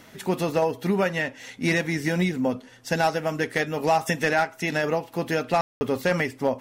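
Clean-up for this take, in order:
ambience match 0:05.61–0:05.81

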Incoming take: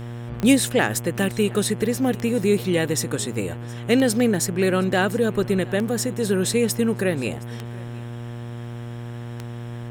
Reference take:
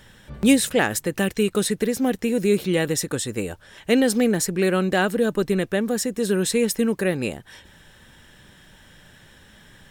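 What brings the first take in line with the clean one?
click removal
hum removal 118.9 Hz, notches 29
echo removal 717 ms −23 dB

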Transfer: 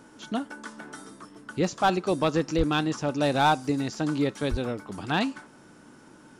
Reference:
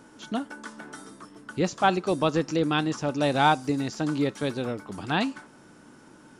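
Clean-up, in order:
clipped peaks rebuilt −14 dBFS
high-pass at the plosives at 0:02.57/0:04.50

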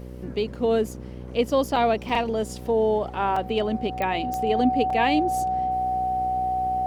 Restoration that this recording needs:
click removal
hum removal 62.1 Hz, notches 9
notch filter 750 Hz, Q 30
repair the gap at 0:01.76/0:02.09/0:03.36/0:04.90, 3.9 ms

